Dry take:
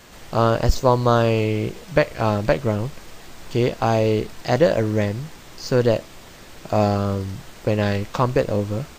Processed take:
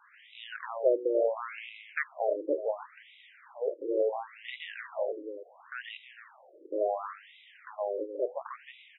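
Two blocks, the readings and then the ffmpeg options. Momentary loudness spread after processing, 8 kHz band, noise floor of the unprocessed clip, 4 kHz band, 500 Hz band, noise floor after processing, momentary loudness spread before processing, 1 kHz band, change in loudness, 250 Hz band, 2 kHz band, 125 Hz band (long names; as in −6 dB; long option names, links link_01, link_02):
19 LU, below −40 dB, −43 dBFS, −15.0 dB, −10.5 dB, −58 dBFS, 9 LU, −15.0 dB, −12.5 dB, −19.0 dB, −10.0 dB, below −40 dB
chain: -filter_complex "[0:a]asplit=2[link_01][link_02];[link_02]adelay=310,highpass=300,lowpass=3400,asoftclip=type=hard:threshold=-11dB,volume=-8dB[link_03];[link_01][link_03]amix=inputs=2:normalize=0,afftfilt=real='re*between(b*sr/1024,390*pow(2800/390,0.5+0.5*sin(2*PI*0.71*pts/sr))/1.41,390*pow(2800/390,0.5+0.5*sin(2*PI*0.71*pts/sr))*1.41)':imag='im*between(b*sr/1024,390*pow(2800/390,0.5+0.5*sin(2*PI*0.71*pts/sr))/1.41,390*pow(2800/390,0.5+0.5*sin(2*PI*0.71*pts/sr))*1.41)':win_size=1024:overlap=0.75,volume=-5.5dB"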